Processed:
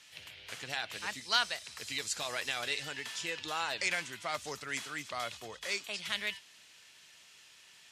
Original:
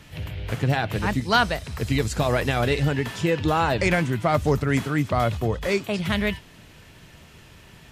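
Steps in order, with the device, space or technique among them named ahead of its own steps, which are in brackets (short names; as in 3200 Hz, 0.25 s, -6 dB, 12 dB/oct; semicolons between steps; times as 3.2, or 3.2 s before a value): piezo pickup straight into a mixer (LPF 6600 Hz 12 dB/oct; differentiator); gain +3 dB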